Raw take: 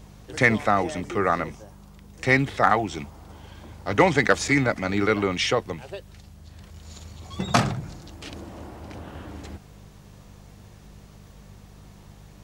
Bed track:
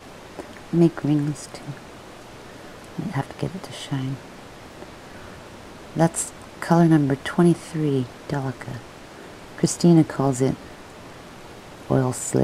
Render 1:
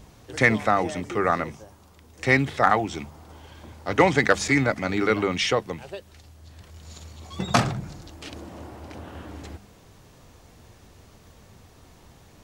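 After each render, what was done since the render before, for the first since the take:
hum removal 50 Hz, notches 4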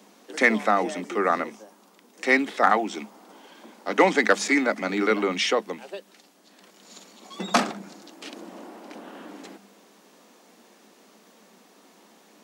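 Butterworth high-pass 190 Hz 72 dB per octave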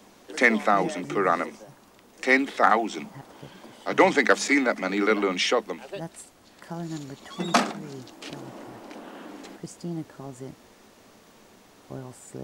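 mix in bed track −18.5 dB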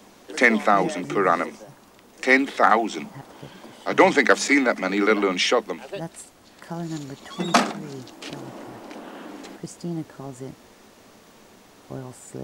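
level +3 dB
brickwall limiter −2 dBFS, peak gain reduction 1.5 dB

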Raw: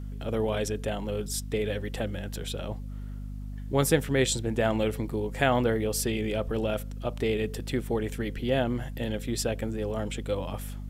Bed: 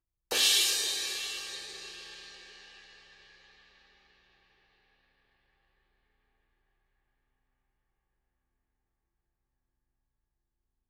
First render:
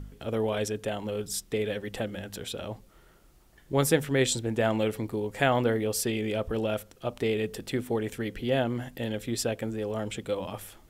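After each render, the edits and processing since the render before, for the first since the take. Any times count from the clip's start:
hum removal 50 Hz, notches 5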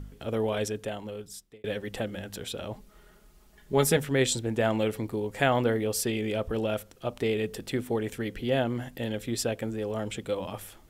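0:00.64–0:01.64: fade out
0:02.73–0:03.97: comb filter 4.8 ms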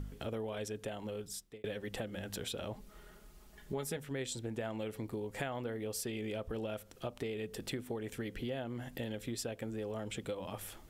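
downward compressor 6 to 1, threshold −37 dBFS, peak gain reduction 17.5 dB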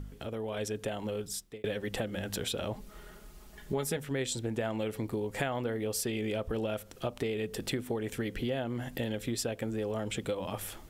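automatic gain control gain up to 6 dB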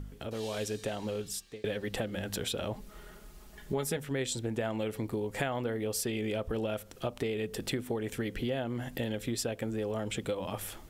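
mix in bed −23 dB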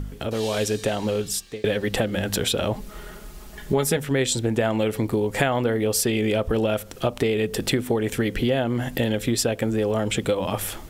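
level +11 dB

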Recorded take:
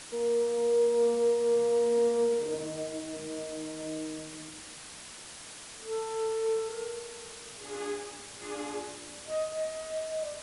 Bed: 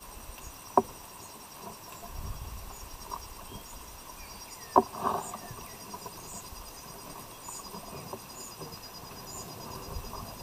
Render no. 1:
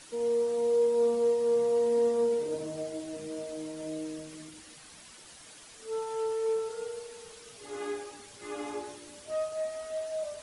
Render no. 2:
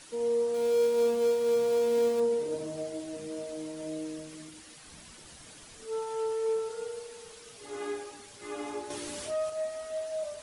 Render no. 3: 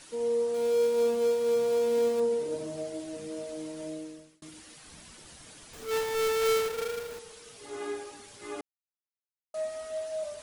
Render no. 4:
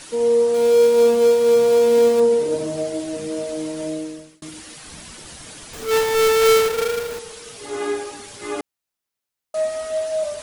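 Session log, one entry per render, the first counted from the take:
broadband denoise 8 dB, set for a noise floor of −47 dBFS
0:00.54–0:02.20: gap after every zero crossing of 0.11 ms; 0:04.86–0:05.85: low-shelf EQ 270 Hz +10 dB; 0:08.90–0:09.50: envelope flattener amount 50%
0:03.83–0:04.42: fade out; 0:05.73–0:07.19: each half-wave held at its own peak; 0:08.61–0:09.54: silence
level +11.5 dB

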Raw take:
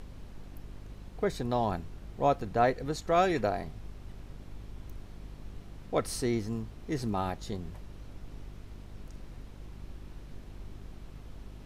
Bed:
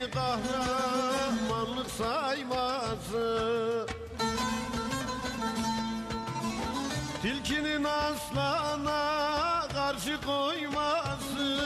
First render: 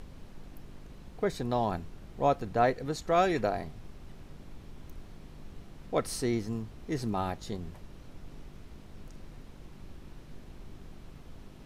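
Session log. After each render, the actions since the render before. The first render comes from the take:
hum removal 50 Hz, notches 2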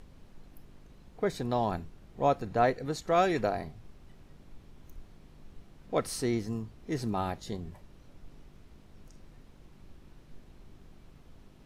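noise reduction from a noise print 6 dB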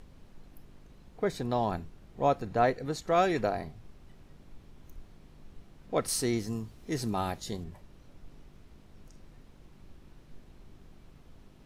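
0:06.08–0:07.64: high-shelf EQ 4,100 Hz +8.5 dB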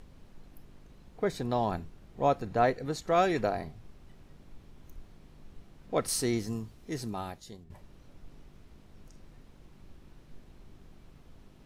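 0:06.48–0:07.70: fade out, to −15 dB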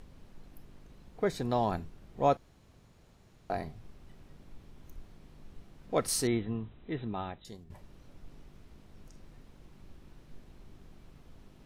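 0:02.37–0:03.50: fill with room tone
0:06.27–0:07.45: linear-phase brick-wall low-pass 4,000 Hz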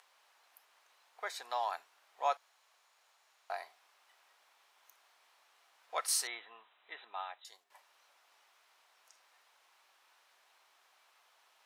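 high-pass filter 810 Hz 24 dB per octave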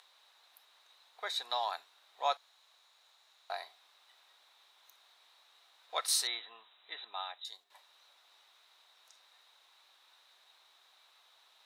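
parametric band 3,800 Hz +15 dB 0.27 octaves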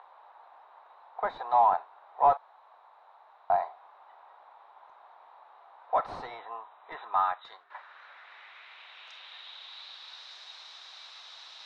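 mid-hump overdrive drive 21 dB, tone 4,100 Hz, clips at −18 dBFS
low-pass filter sweep 880 Hz → 5,300 Hz, 0:06.70–0:10.34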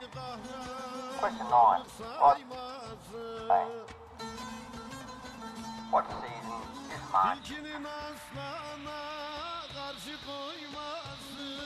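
mix in bed −11 dB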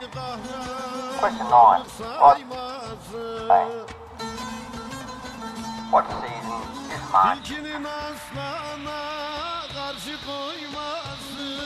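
level +9 dB

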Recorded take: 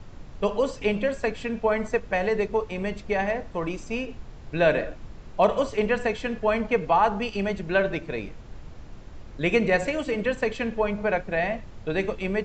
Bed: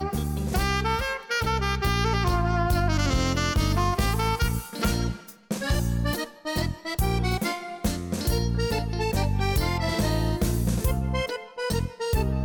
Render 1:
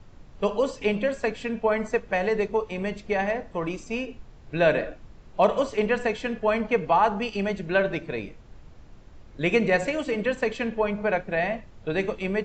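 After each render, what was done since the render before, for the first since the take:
noise reduction from a noise print 6 dB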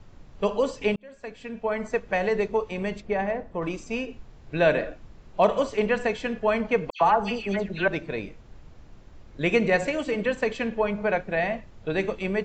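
0:00.96–0:02.13: fade in linear
0:03.00–0:03.61: high-shelf EQ 3,000 Hz → 2,100 Hz −12 dB
0:06.90–0:07.88: all-pass dispersion lows, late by 111 ms, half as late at 2,700 Hz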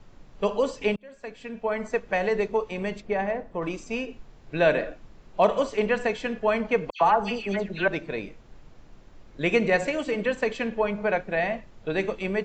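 parametric band 74 Hz −7 dB 1.5 octaves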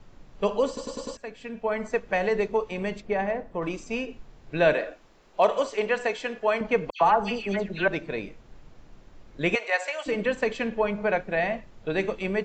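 0:00.67: stutter in place 0.10 s, 5 plays
0:04.73–0:06.61: bass and treble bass −13 dB, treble +2 dB
0:09.55–0:10.06: high-pass filter 650 Hz 24 dB per octave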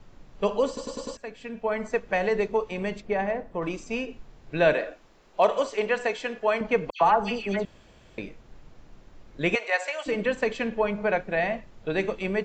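0:07.65–0:08.18: fill with room tone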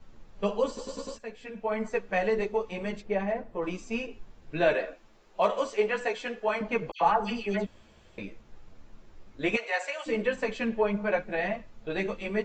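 string-ensemble chorus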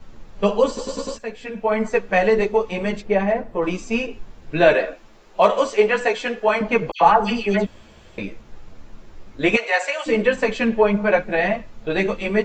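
level +10 dB

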